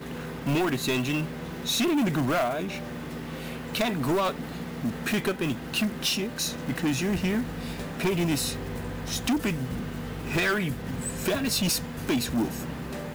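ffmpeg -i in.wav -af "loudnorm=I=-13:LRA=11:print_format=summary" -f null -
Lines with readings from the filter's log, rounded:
Input Integrated:    -28.1 LUFS
Input True Peak:     -18.7 dBTP
Input LRA:             1.0 LU
Input Threshold:     -38.1 LUFS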